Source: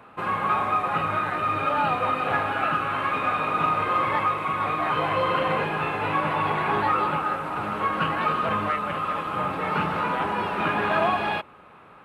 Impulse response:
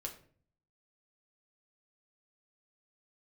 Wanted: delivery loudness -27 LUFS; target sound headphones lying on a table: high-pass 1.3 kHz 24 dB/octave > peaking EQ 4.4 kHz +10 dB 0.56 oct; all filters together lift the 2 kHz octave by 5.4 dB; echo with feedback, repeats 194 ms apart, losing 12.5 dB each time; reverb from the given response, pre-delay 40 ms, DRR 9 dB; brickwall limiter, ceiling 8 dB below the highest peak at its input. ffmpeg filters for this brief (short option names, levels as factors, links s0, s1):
-filter_complex "[0:a]equalizer=f=2000:t=o:g=7,alimiter=limit=0.15:level=0:latency=1,aecho=1:1:194|388|582:0.237|0.0569|0.0137,asplit=2[s0][s1];[1:a]atrim=start_sample=2205,adelay=40[s2];[s1][s2]afir=irnorm=-1:irlink=0,volume=0.447[s3];[s0][s3]amix=inputs=2:normalize=0,highpass=f=1300:w=0.5412,highpass=f=1300:w=1.3066,equalizer=f=4400:t=o:w=0.56:g=10,volume=0.944"